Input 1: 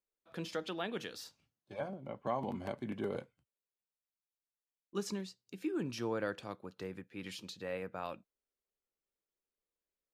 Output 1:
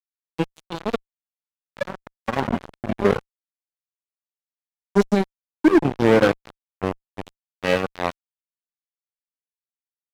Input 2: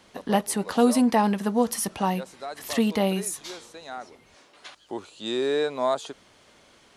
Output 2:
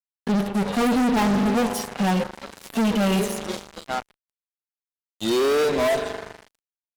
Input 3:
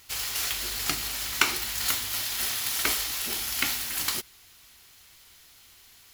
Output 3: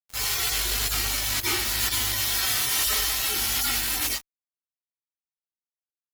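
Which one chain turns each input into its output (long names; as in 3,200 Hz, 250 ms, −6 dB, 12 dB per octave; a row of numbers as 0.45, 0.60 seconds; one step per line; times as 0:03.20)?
harmonic-percussive split with one part muted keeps harmonic
spring reverb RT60 3 s, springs 40 ms, chirp 65 ms, DRR 12 dB
fuzz pedal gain 34 dB, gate −40 dBFS
loudness normalisation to −23 LKFS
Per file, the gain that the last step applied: +6.0, −5.0, −6.0 decibels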